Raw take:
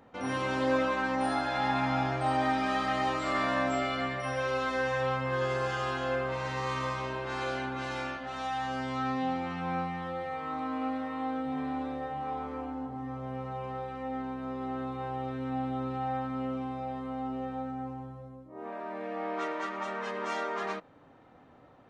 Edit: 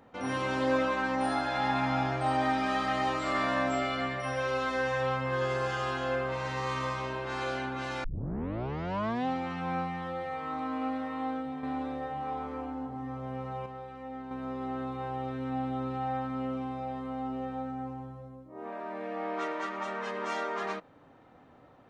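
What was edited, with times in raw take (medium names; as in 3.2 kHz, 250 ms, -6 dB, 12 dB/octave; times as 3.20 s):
8.04 s: tape start 1.22 s
11.29–11.63 s: fade out, to -6.5 dB
13.66–14.31 s: gain -5.5 dB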